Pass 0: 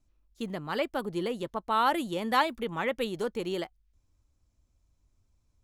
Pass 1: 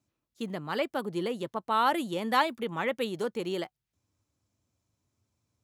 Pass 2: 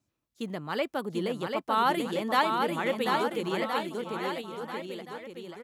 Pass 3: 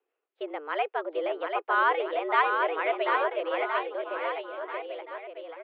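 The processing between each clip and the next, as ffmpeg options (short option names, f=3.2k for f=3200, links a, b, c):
-af "highpass=f=100:w=0.5412,highpass=f=100:w=1.3066"
-af "aecho=1:1:740|1369|1904|2358|2744:0.631|0.398|0.251|0.158|0.1"
-af "highpass=f=210:t=q:w=0.5412,highpass=f=210:t=q:w=1.307,lowpass=f=2.8k:t=q:w=0.5176,lowpass=f=2.8k:t=q:w=0.7071,lowpass=f=2.8k:t=q:w=1.932,afreqshift=150,volume=1.5dB"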